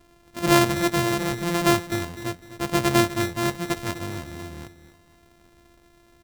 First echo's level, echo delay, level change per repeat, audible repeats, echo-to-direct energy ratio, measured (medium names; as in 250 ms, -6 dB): -13.5 dB, 252 ms, -9.5 dB, 3, -13.0 dB